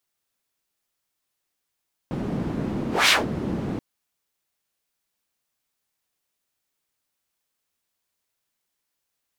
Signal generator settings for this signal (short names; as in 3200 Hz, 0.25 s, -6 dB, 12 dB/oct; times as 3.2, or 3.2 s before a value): whoosh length 1.68 s, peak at 0.98, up 0.20 s, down 0.18 s, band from 220 Hz, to 3300 Hz, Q 1.4, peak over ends 11 dB